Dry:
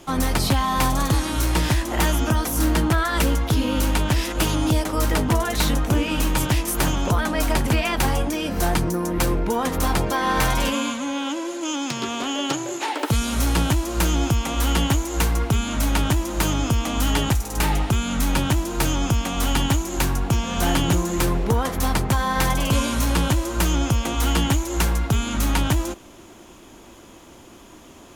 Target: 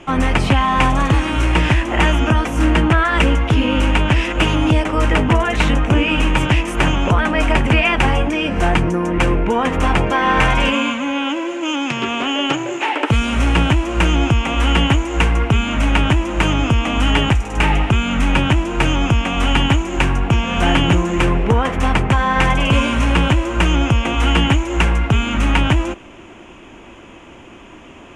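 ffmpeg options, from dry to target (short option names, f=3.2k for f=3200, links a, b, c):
-af "lowpass=f=8.3k:w=0.5412,lowpass=f=8.3k:w=1.3066,highshelf=f=3.4k:t=q:w=3:g=-7.5,volume=5.5dB"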